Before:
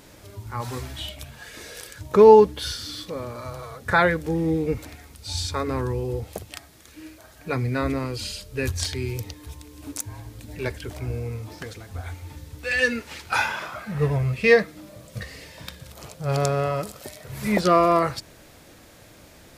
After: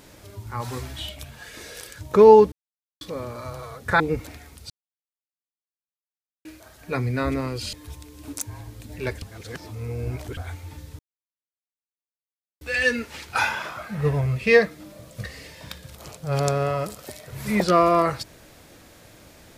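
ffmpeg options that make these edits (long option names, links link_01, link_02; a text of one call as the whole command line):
ffmpeg -i in.wav -filter_complex "[0:a]asplit=10[link_01][link_02][link_03][link_04][link_05][link_06][link_07][link_08][link_09][link_10];[link_01]atrim=end=2.52,asetpts=PTS-STARTPTS,afade=type=out:start_time=2.516:duration=0.004:curve=hsin[link_11];[link_02]atrim=start=2.52:end=3.01,asetpts=PTS-STARTPTS,volume=0[link_12];[link_03]atrim=start=3.01:end=4.002,asetpts=PTS-STARTPTS,afade=type=in:duration=0.004:curve=hsin[link_13];[link_04]atrim=start=4.578:end=5.28,asetpts=PTS-STARTPTS,afade=type=out:start_time=0.698:duration=0.004:curve=hsin[link_14];[link_05]atrim=start=5.28:end=7.03,asetpts=PTS-STARTPTS,volume=0[link_15];[link_06]atrim=start=7.03:end=8.312,asetpts=PTS-STARTPTS,afade=type=in:duration=0.004:curve=hsin[link_16];[link_07]atrim=start=9.318:end=10.812[link_17];[link_08]atrim=start=10.808:end=11.962,asetpts=PTS-STARTPTS,areverse[link_18];[link_09]atrim=start=11.958:end=12.58,asetpts=PTS-STARTPTS,afade=type=out:start_time=0.618:duration=0.004:curve=hsin,apad=pad_dur=1.62[link_19];[link_10]atrim=start=12.58,asetpts=PTS-STARTPTS,afade=type=in:duration=0.004:curve=hsin[link_20];[link_11][link_12][link_13]concat=n=3:v=0:a=1[link_21];[link_14][link_15][link_16]concat=n=3:v=0:a=1[link_22];[link_21][link_22]acrossfade=duration=0.004:curve1=hsin:curve2=hsin[link_23];[link_23][link_17]acrossfade=duration=0.004:curve1=hsin:curve2=hsin[link_24];[link_24][link_18]acrossfade=duration=0.004:curve1=hsin:curve2=hsin[link_25];[link_19][link_20]concat=n=2:v=0:a=1[link_26];[link_25][link_26]acrossfade=duration=0.004:curve1=hsin:curve2=hsin" out.wav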